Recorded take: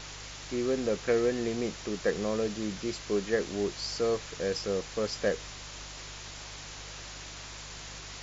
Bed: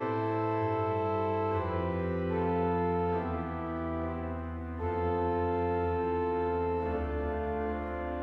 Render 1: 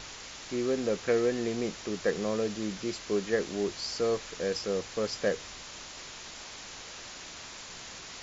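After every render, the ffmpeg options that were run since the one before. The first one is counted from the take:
ffmpeg -i in.wav -af "bandreject=frequency=50:width_type=h:width=4,bandreject=frequency=100:width_type=h:width=4,bandreject=frequency=150:width_type=h:width=4" out.wav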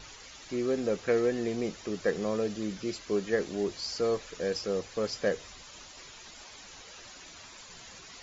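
ffmpeg -i in.wav -af "afftdn=noise_reduction=10:noise_floor=-45" out.wav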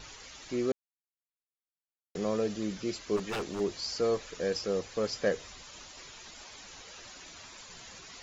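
ffmpeg -i in.wav -filter_complex "[0:a]asplit=3[link_01][link_02][link_03];[link_01]afade=type=out:start_time=3.16:duration=0.02[link_04];[link_02]aeval=exprs='0.0376*(abs(mod(val(0)/0.0376+3,4)-2)-1)':channel_layout=same,afade=type=in:start_time=3.16:duration=0.02,afade=type=out:start_time=3.59:duration=0.02[link_05];[link_03]afade=type=in:start_time=3.59:duration=0.02[link_06];[link_04][link_05][link_06]amix=inputs=3:normalize=0,asplit=3[link_07][link_08][link_09];[link_07]atrim=end=0.72,asetpts=PTS-STARTPTS,afade=type=out:start_time=0.716:duration=0.004:curve=hsin[link_10];[link_08]atrim=start=0.72:end=2.15,asetpts=PTS-STARTPTS,volume=0[link_11];[link_09]atrim=start=2.15,asetpts=PTS-STARTPTS,afade=type=in:duration=0.004:curve=hsin[link_12];[link_10][link_11][link_12]concat=n=3:v=0:a=1" out.wav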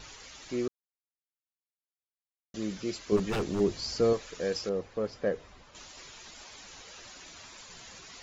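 ffmpeg -i in.wav -filter_complex "[0:a]asettb=1/sr,asplit=3[link_01][link_02][link_03];[link_01]atrim=end=3.124[link_04];[link_02]atrim=start=3.12:end=4.13,asetpts=PTS-STARTPTS,afade=type=in:duration=0.004:curve=qsin,afade=type=out:start_time=1.006:duration=0.004:curve=qsin,lowshelf=frequency=320:gain=10.5[link_05];[link_03]atrim=start=4.126[link_06];[link_04][link_05]acrossfade=duration=0.004:curve1=hsin:curve2=qsin[link_07];[link_07][link_06]acrossfade=duration=0.004:curve1=qsin:curve2=hsin,asettb=1/sr,asplit=3[link_08][link_09][link_10];[link_08]atrim=end=4.694[link_11];[link_09]atrim=start=4.69:end=5.75,asetpts=PTS-STARTPTS,afade=type=in:duration=0.004:curve=qsin,afade=type=out:start_time=1.056:duration=0.004:curve=qsin,lowpass=frequency=1100:poles=1[link_12];[link_10]atrim=start=5.746[link_13];[link_11][link_12]acrossfade=duration=0.004:curve1=hsin:curve2=qsin[link_14];[link_14][link_13]acrossfade=duration=0.004:curve1=qsin:curve2=hsin,asplit=3[link_15][link_16][link_17];[link_15]atrim=end=0.68,asetpts=PTS-STARTPTS,afade=type=out:start_time=0.676:duration=0.004:curve=hsin[link_18];[link_16]atrim=start=0.68:end=2.54,asetpts=PTS-STARTPTS,volume=0[link_19];[link_17]atrim=start=2.54,asetpts=PTS-STARTPTS,afade=type=in:duration=0.004:curve=hsin[link_20];[link_18][link_19][link_20]concat=n=3:v=0:a=1" out.wav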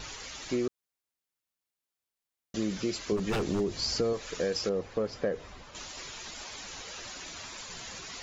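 ffmpeg -i in.wav -filter_complex "[0:a]asplit=2[link_01][link_02];[link_02]alimiter=level_in=0.5dB:limit=-24dB:level=0:latency=1,volume=-0.5dB,volume=0dB[link_03];[link_01][link_03]amix=inputs=2:normalize=0,acompressor=threshold=-26dB:ratio=6" out.wav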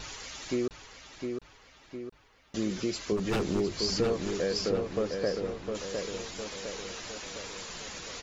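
ffmpeg -i in.wav -filter_complex "[0:a]asplit=2[link_01][link_02];[link_02]adelay=708,lowpass=frequency=3900:poles=1,volume=-5dB,asplit=2[link_03][link_04];[link_04]adelay=708,lowpass=frequency=3900:poles=1,volume=0.55,asplit=2[link_05][link_06];[link_06]adelay=708,lowpass=frequency=3900:poles=1,volume=0.55,asplit=2[link_07][link_08];[link_08]adelay=708,lowpass=frequency=3900:poles=1,volume=0.55,asplit=2[link_09][link_10];[link_10]adelay=708,lowpass=frequency=3900:poles=1,volume=0.55,asplit=2[link_11][link_12];[link_12]adelay=708,lowpass=frequency=3900:poles=1,volume=0.55,asplit=2[link_13][link_14];[link_14]adelay=708,lowpass=frequency=3900:poles=1,volume=0.55[link_15];[link_01][link_03][link_05][link_07][link_09][link_11][link_13][link_15]amix=inputs=8:normalize=0" out.wav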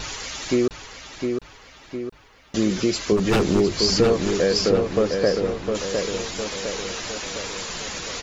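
ffmpeg -i in.wav -af "volume=10dB" out.wav

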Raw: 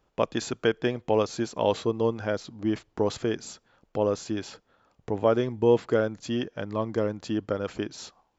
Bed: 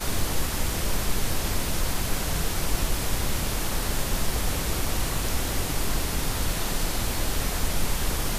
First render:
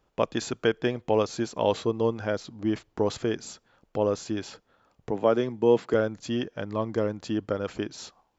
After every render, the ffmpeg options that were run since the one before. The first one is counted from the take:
ffmpeg -i in.wav -filter_complex "[0:a]asettb=1/sr,asplit=3[link_01][link_02][link_03];[link_01]atrim=end=5.114[link_04];[link_02]atrim=start=5.11:end=5.94,asetpts=PTS-STARTPTS,afade=type=in:duration=0.004:curve=qsin,afade=type=out:start_time=0.826:duration=0.004:curve=qsin,highpass=frequency=130:width=0.5412,highpass=frequency=130:width=1.3066[link_05];[link_03]atrim=start=5.936[link_06];[link_04][link_05]acrossfade=duration=0.004:curve1=hsin:curve2=qsin[link_07];[link_07][link_06]acrossfade=duration=0.004:curve1=qsin:curve2=hsin" out.wav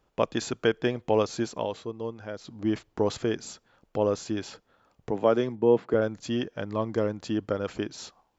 ffmpeg -i in.wav -filter_complex "[0:a]asettb=1/sr,asplit=3[link_01][link_02][link_03];[link_01]atrim=end=5.554[link_04];[link_02]atrim=start=5.55:end=6.02,asetpts=PTS-STARTPTS,afade=type=in:duration=0.004:curve=qsin,afade=type=out:start_time=0.466:duration=0.004:curve=qsin,lowpass=frequency=1400:poles=1[link_05];[link_03]atrim=start=6.016[link_06];[link_04][link_05]acrossfade=duration=0.004:curve1=hsin:curve2=qsin[link_07];[link_07][link_06]acrossfade=duration=0.004:curve1=qsin:curve2=hsin,asplit=3[link_08][link_09][link_10];[link_08]atrim=end=1.68,asetpts=PTS-STARTPTS,afade=type=out:start_time=1.55:duration=0.13:silence=0.354813[link_11];[link_09]atrim=start=1.68:end=2.38,asetpts=PTS-STARTPTS,volume=-9dB[link_12];[link_10]atrim=start=2.38,asetpts=PTS-STARTPTS,afade=type=in:duration=0.13:silence=0.354813[link_13];[link_11][link_12][link_13]concat=n=3:v=0:a=1" out.wav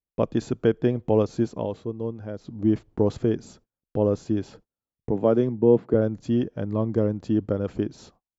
ffmpeg -i in.wav -af "agate=range=-34dB:threshold=-52dB:ratio=16:detection=peak,tiltshelf=frequency=640:gain=9" out.wav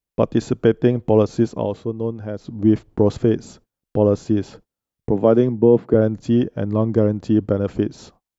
ffmpeg -i in.wav -af "volume=6dB,alimiter=limit=-3dB:level=0:latency=1" out.wav

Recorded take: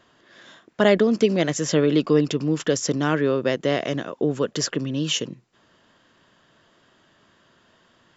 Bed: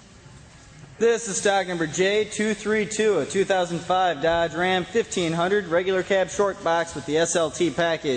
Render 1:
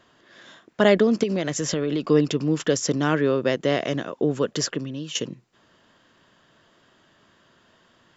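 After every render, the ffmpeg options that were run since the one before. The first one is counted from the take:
ffmpeg -i in.wav -filter_complex "[0:a]asettb=1/sr,asplit=3[link_01][link_02][link_03];[link_01]atrim=end=1.234[link_04];[link_02]atrim=start=1.23:end=2.09,asetpts=PTS-STARTPTS,afade=type=in:duration=0.004:curve=qsin,afade=type=out:start_time=0.856:duration=0.004:curve=qsin,acompressor=threshold=-20dB:ratio=6:attack=3.2:release=140:knee=1:detection=peak[link_05];[link_03]atrim=start=2.086[link_06];[link_04][link_05]acrossfade=duration=0.004:curve1=hsin:curve2=qsin[link_07];[link_07][link_06]acrossfade=duration=0.004:curve1=qsin:curve2=hsin,asplit=2[link_08][link_09];[link_08]atrim=end=5.15,asetpts=PTS-STARTPTS,afade=type=out:start_time=4.58:duration=0.57:silence=0.211349[link_10];[link_09]atrim=start=5.15,asetpts=PTS-STARTPTS,afade=type=in:duration=0.004:curve=hsin:silence=0.211349[link_11];[link_10][link_11]concat=n=2:v=0:a=1" out.wav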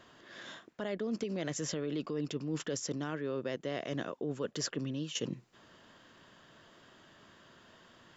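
ffmpeg -i in.wav -af "alimiter=limit=-15dB:level=0:latency=1:release=271,areverse,acompressor=threshold=-33dB:ratio=6,areverse" out.wav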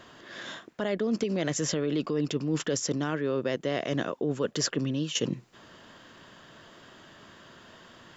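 ffmpeg -i in.wav -af "volume=7.5dB" out.wav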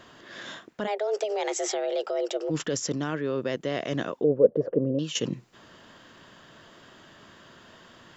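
ffmpeg -i in.wav -filter_complex "[0:a]asplit=3[link_01][link_02][link_03];[link_01]afade=type=out:start_time=0.86:duration=0.02[link_04];[link_02]afreqshift=210,afade=type=in:start_time=0.86:duration=0.02,afade=type=out:start_time=2.49:duration=0.02[link_05];[link_03]afade=type=in:start_time=2.49:duration=0.02[link_06];[link_04][link_05][link_06]amix=inputs=3:normalize=0,asettb=1/sr,asplit=3[link_07][link_08][link_09];[link_07]atrim=end=4.244[link_10];[link_08]atrim=start=4.24:end=4.99,asetpts=PTS-STARTPTS,afade=type=in:duration=0.004:curve=qsin,afade=type=out:start_time=0.746:duration=0.004:curve=qsin,lowpass=frequency=520:width_type=q:width=5.3[link_11];[link_09]atrim=start=4.986[link_12];[link_10][link_11]acrossfade=duration=0.004:curve1=hsin:curve2=qsin[link_13];[link_13][link_12]acrossfade=duration=0.004:curve1=qsin:curve2=hsin" out.wav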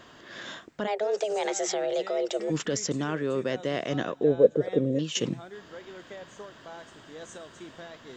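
ffmpeg -i in.wav -i bed.wav -filter_complex "[1:a]volume=-22.5dB[link_01];[0:a][link_01]amix=inputs=2:normalize=0" out.wav

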